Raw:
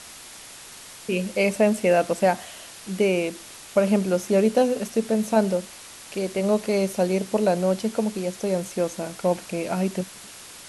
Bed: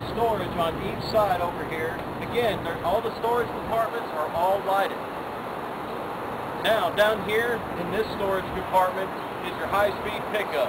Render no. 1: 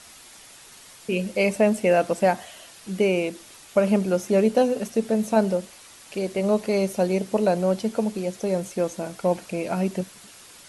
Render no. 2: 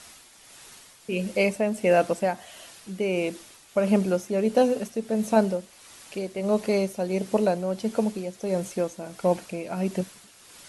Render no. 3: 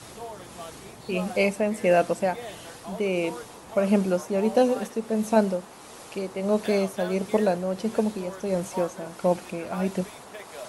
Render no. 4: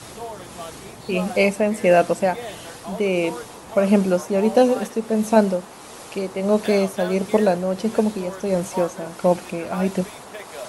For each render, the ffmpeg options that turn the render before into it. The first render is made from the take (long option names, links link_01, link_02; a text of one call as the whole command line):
ffmpeg -i in.wav -af "afftdn=noise_reduction=6:noise_floor=-43" out.wav
ffmpeg -i in.wav -af "tremolo=f=1.5:d=0.52" out.wav
ffmpeg -i in.wav -i bed.wav -filter_complex "[1:a]volume=-15dB[link_01];[0:a][link_01]amix=inputs=2:normalize=0" out.wav
ffmpeg -i in.wav -af "volume=5dB" out.wav